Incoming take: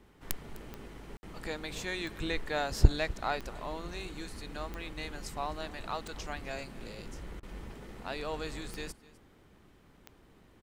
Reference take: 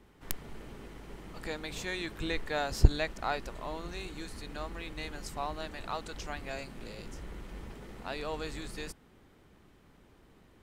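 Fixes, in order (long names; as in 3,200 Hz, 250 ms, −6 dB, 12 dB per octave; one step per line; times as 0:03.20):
click removal
repair the gap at 0:01.17, 60 ms
repair the gap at 0:07.40, 28 ms
echo removal 254 ms −20.5 dB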